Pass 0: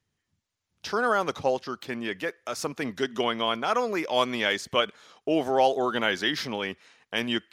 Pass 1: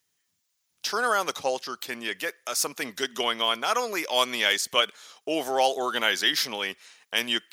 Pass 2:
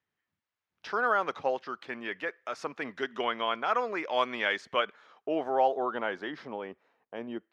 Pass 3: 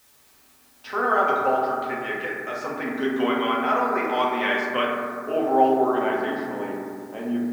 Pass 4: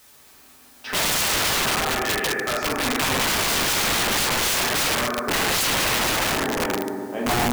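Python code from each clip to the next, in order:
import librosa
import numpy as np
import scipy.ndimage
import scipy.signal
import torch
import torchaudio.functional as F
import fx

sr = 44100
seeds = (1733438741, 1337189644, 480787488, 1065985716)

y1 = fx.riaa(x, sr, side='recording')
y2 = fx.filter_sweep_lowpass(y1, sr, from_hz=1800.0, to_hz=590.0, start_s=4.65, end_s=7.45, q=0.9)
y2 = y2 * 10.0 ** (-2.5 / 20.0)
y3 = fx.quant_dither(y2, sr, seeds[0], bits=10, dither='triangular')
y3 = fx.rev_fdn(y3, sr, rt60_s=2.2, lf_ratio=1.5, hf_ratio=0.25, size_ms=23.0, drr_db=-5.5)
y4 = (np.mod(10.0 ** (23.0 / 20.0) * y3 + 1.0, 2.0) - 1.0) / 10.0 ** (23.0 / 20.0)
y4 = y4 * 10.0 ** (6.0 / 20.0)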